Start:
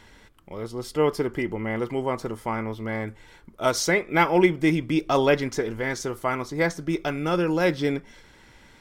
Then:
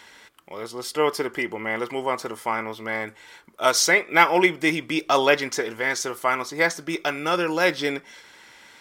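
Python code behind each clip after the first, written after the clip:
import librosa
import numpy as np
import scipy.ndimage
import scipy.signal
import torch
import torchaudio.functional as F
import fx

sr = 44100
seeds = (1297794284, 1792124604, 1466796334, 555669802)

y = fx.highpass(x, sr, hz=950.0, slope=6)
y = F.gain(torch.from_numpy(y), 7.0).numpy()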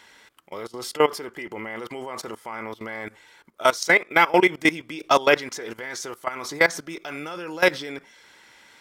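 y = fx.level_steps(x, sr, step_db=19)
y = F.gain(torch.from_numpy(y), 4.5).numpy()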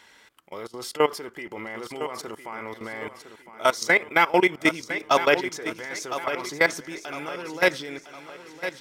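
y = fx.echo_feedback(x, sr, ms=1008, feedback_pct=42, wet_db=-11)
y = F.gain(torch.from_numpy(y), -2.0).numpy()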